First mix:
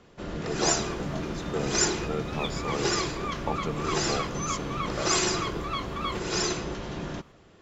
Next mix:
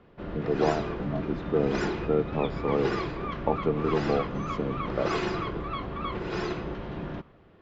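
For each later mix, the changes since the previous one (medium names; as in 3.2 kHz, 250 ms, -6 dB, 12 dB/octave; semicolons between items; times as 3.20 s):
speech: add peaking EQ 370 Hz +9 dB 2.2 oct; master: add distance through air 360 m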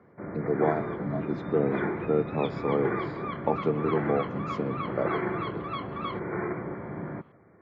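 first sound: add brick-wall FIR low-pass 2.4 kHz; master: add high-pass 92 Hz 24 dB/octave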